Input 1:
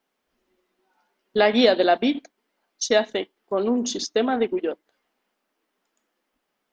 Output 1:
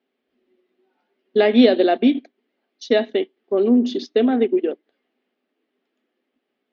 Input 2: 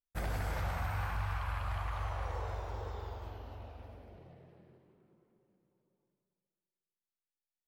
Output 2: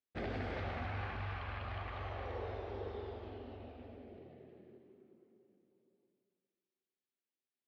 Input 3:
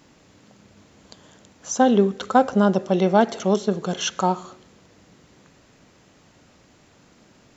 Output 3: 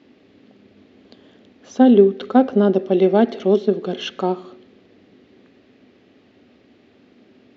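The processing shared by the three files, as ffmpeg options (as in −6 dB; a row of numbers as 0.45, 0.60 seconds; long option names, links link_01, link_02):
-af "highpass=100,equalizer=frequency=150:width_type=q:width=4:gain=-10,equalizer=frequency=250:width_type=q:width=4:gain=9,equalizer=frequency=390:width_type=q:width=4:gain=8,equalizer=frequency=970:width_type=q:width=4:gain=-9,equalizer=frequency=1400:width_type=q:width=4:gain=-5,lowpass=frequency=4000:width=0.5412,lowpass=frequency=4000:width=1.3066"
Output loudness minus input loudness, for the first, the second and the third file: +4.0, −4.5, +3.5 LU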